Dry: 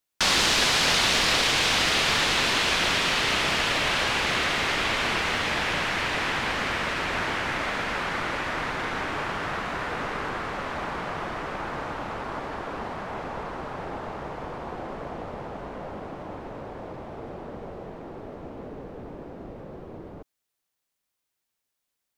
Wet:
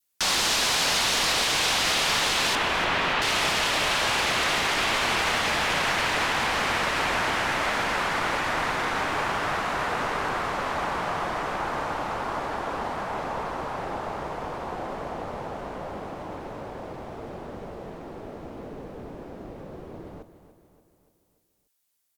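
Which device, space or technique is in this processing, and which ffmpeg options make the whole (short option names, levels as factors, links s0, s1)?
soft clipper into limiter: -filter_complex "[0:a]aemphasis=mode=production:type=cd,asettb=1/sr,asplit=3[s0][s1][s2];[s0]atrim=end=2.554[s3];[s1]atrim=start=2.55:end=3.22,asetpts=PTS-STARTPTS,afade=t=in:d=0.004:c=qsin,afade=t=out:st=0.666:d=0.004:c=qsin,lowpass=2400[s4];[s2]atrim=start=3.216[s5];[s3][s4]acrossfade=d=0.004:c1=hsin:c2=qsin[s6];[s6][s5]acrossfade=d=0.004:c1=qsin:c2=hsin,adynamicequalizer=threshold=0.0126:dfrequency=840:dqfactor=1:tfrequency=840:tqfactor=1:attack=5:release=100:ratio=0.375:range=2.5:mode=boostabove:tftype=bell,asoftclip=type=tanh:threshold=0.316,alimiter=limit=0.15:level=0:latency=1:release=18,aecho=1:1:290|580|870|1160|1450:0.224|0.114|0.0582|0.0297|0.0151"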